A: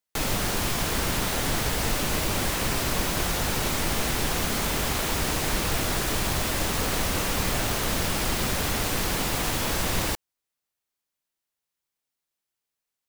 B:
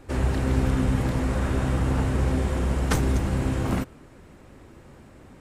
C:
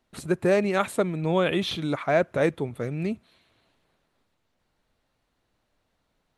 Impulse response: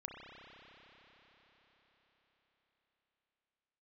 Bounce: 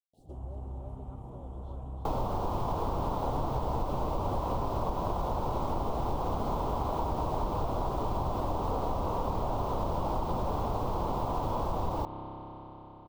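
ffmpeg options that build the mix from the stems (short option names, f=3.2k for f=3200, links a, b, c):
-filter_complex "[0:a]equalizer=f=9.4k:w=0.56:g=-12,adelay=1900,volume=-0.5dB,asplit=2[a][b];[b]volume=-5.5dB[c];[1:a]adelay=200,volume=-11dB,asplit=2[d][e];[e]volume=-8.5dB[f];[2:a]acrusher=bits=6:mix=0:aa=0.000001,volume=-20dB,asplit=2[g][h];[h]volume=-12.5dB[i];[d][g]amix=inputs=2:normalize=0,asuperstop=centerf=1500:order=20:qfactor=0.79,acompressor=threshold=-43dB:ratio=6,volume=0dB[j];[3:a]atrim=start_sample=2205[k];[c][f]amix=inputs=2:normalize=0[l];[l][k]afir=irnorm=-1:irlink=0[m];[i]aecho=0:1:333:1[n];[a][j][m][n]amix=inputs=4:normalize=0,firequalizer=gain_entry='entry(110,0);entry(180,-4);entry(590,2);entry(980,6);entry(1700,-25);entry(3300,-14);entry(10000,-16)':delay=0.05:min_phase=1,acompressor=threshold=-27dB:ratio=6"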